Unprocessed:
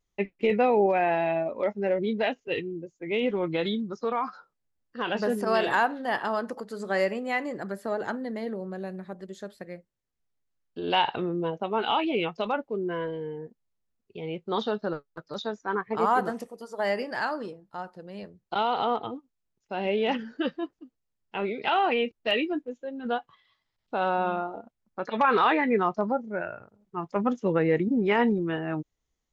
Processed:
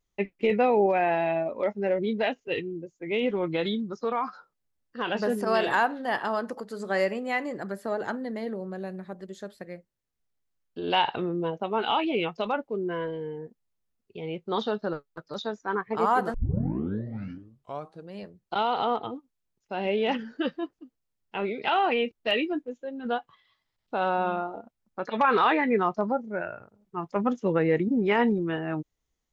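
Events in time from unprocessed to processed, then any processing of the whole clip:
0:16.34: tape start 1.78 s

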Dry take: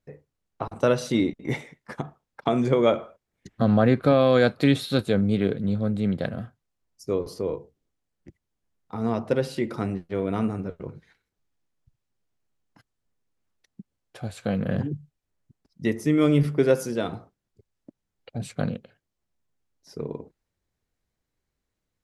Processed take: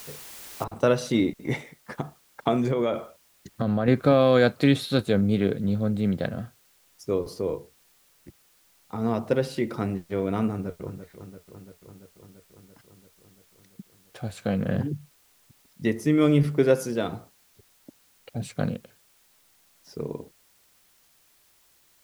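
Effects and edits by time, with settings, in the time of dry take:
0:00.64: noise floor change −43 dB −62 dB
0:02.56–0:03.88: downward compressor, threshold −20 dBFS
0:10.52–0:10.92: delay throw 340 ms, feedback 75%, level −10.5 dB

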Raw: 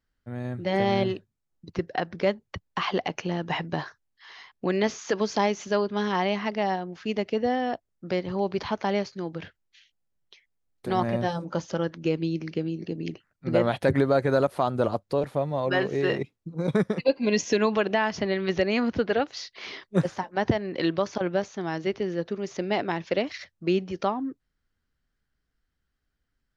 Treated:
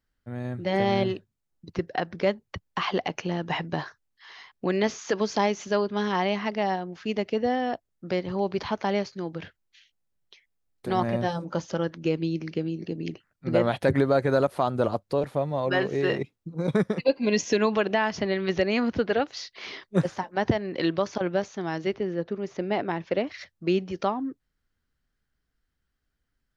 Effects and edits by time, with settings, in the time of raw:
0:21.95–0:23.38: high-shelf EQ 3,700 Hz −12 dB

